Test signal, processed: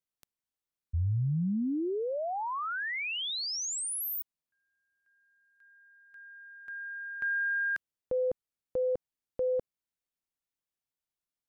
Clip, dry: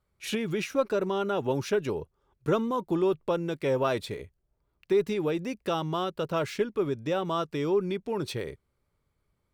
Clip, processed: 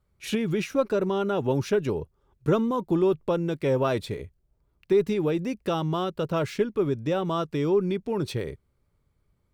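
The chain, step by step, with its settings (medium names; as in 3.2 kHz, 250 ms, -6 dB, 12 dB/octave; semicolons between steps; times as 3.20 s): bass shelf 330 Hz +7 dB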